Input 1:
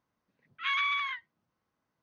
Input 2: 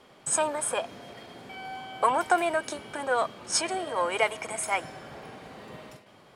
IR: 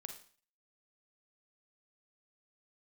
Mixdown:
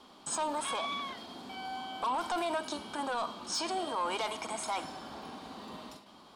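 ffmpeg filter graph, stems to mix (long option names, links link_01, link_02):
-filter_complex "[0:a]volume=-7dB[link_01];[1:a]acrossover=split=6800[link_02][link_03];[link_03]acompressor=threshold=-48dB:ratio=4:attack=1:release=60[link_04];[link_02][link_04]amix=inputs=2:normalize=0,equalizer=frequency=130:width=2.9:gain=-8.5,volume=-4dB,asplit=2[link_05][link_06];[link_06]volume=-3.5dB[link_07];[2:a]atrim=start_sample=2205[link_08];[link_07][link_08]afir=irnorm=-1:irlink=0[link_09];[link_01][link_05][link_09]amix=inputs=3:normalize=0,asoftclip=type=tanh:threshold=-23.5dB,equalizer=frequency=125:width_type=o:width=1:gain=-5,equalizer=frequency=250:width_type=o:width=1:gain=7,equalizer=frequency=500:width_type=o:width=1:gain=-7,equalizer=frequency=1000:width_type=o:width=1:gain=7,equalizer=frequency=2000:width_type=o:width=1:gain=-9,equalizer=frequency=4000:width_type=o:width=1:gain=8,alimiter=level_in=1.5dB:limit=-24dB:level=0:latency=1:release=34,volume=-1.5dB"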